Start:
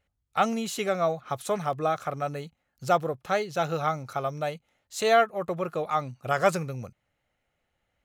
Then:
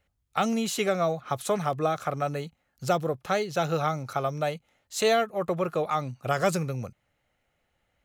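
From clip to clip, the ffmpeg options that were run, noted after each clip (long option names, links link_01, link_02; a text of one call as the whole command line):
ffmpeg -i in.wav -filter_complex "[0:a]acrossover=split=420|3000[link_01][link_02][link_03];[link_02]acompressor=threshold=-27dB:ratio=6[link_04];[link_01][link_04][link_03]amix=inputs=3:normalize=0,volume=3dB" out.wav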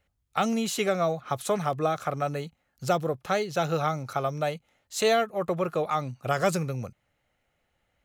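ffmpeg -i in.wav -af anull out.wav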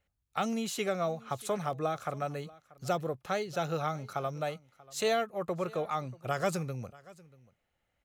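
ffmpeg -i in.wav -af "aecho=1:1:636:0.0794,volume=-6dB" out.wav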